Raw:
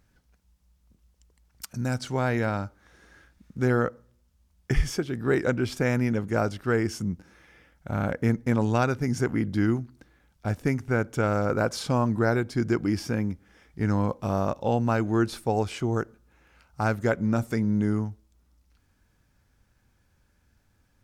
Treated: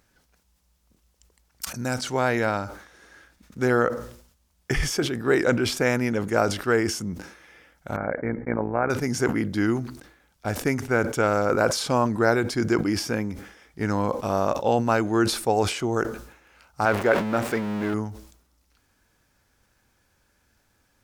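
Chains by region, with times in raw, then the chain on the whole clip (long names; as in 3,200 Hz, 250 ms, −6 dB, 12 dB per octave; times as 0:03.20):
0:07.96–0:08.90: amplitude modulation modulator 59 Hz, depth 45% + Chebyshev low-pass with heavy ripple 2,300 Hz, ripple 3 dB
0:16.85–0:17.94: converter with a step at zero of −29 dBFS + bass and treble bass −7 dB, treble −15 dB
whole clip: bass and treble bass −9 dB, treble +2 dB; level that may fall only so fast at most 88 dB per second; level +4.5 dB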